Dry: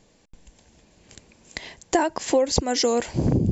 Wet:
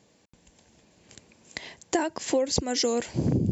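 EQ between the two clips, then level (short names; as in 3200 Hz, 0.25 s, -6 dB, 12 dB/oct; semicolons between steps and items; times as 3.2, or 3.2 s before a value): HPF 86 Hz 12 dB/oct; dynamic EQ 890 Hz, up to -5 dB, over -34 dBFS, Q 0.89; -2.5 dB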